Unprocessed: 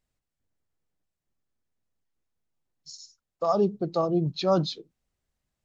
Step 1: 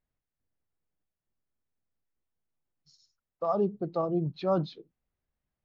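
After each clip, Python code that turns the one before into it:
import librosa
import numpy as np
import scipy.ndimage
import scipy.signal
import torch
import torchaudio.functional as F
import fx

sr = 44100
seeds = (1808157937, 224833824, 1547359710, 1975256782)

y = scipy.signal.sosfilt(scipy.signal.butter(2, 2400.0, 'lowpass', fs=sr, output='sos'), x)
y = y * librosa.db_to_amplitude(-4.0)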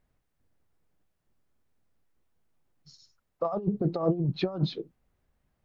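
y = fx.high_shelf(x, sr, hz=2700.0, db=-7.5)
y = fx.over_compress(y, sr, threshold_db=-33.0, ratio=-0.5)
y = y * librosa.db_to_amplitude(7.0)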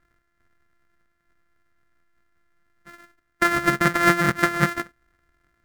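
y = np.r_[np.sort(x[:len(x) // 128 * 128].reshape(-1, 128), axis=1).ravel(), x[len(x) // 128 * 128:]]
y = fx.band_shelf(y, sr, hz=1600.0, db=13.0, octaves=1.0)
y = y * librosa.db_to_amplitude(4.5)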